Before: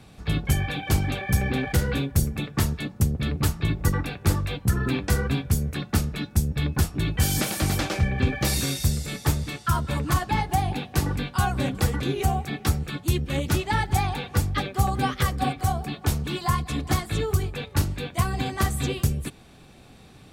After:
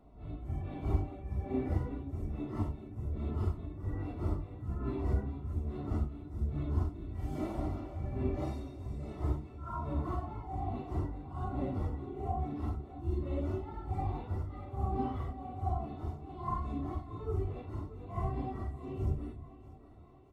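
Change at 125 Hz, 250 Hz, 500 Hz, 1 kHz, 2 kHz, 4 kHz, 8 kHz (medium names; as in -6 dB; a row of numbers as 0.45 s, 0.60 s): -11.5 dB, -10.5 dB, -9.0 dB, -12.5 dB, -26.5 dB, under -30 dB, under -35 dB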